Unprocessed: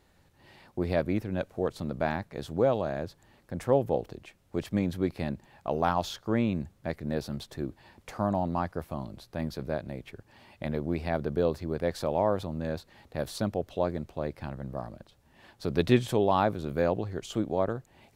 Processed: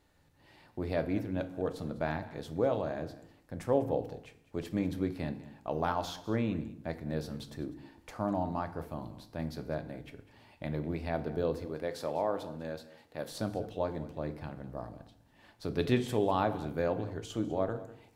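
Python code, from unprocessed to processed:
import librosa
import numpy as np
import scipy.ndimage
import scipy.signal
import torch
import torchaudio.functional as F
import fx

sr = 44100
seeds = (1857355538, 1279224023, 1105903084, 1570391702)

y = fx.highpass(x, sr, hz=300.0, slope=6, at=(11.65, 13.31))
y = y + 10.0 ** (-18.0 / 20.0) * np.pad(y, (int(199 * sr / 1000.0), 0))[:len(y)]
y = fx.rev_fdn(y, sr, rt60_s=0.65, lf_ratio=1.25, hf_ratio=0.75, size_ms=20.0, drr_db=8.0)
y = y * librosa.db_to_amplitude(-5.0)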